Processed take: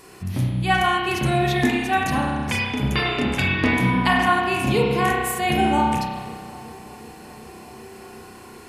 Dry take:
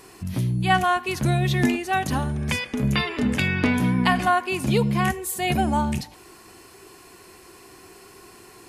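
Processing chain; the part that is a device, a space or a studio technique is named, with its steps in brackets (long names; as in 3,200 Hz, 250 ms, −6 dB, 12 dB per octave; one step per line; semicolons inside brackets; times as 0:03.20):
dub delay into a spring reverb (feedback echo with a low-pass in the loop 377 ms, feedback 85%, low-pass 2,200 Hz, level −23 dB; spring reverb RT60 1.6 s, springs 31 ms, chirp 20 ms, DRR −2 dB)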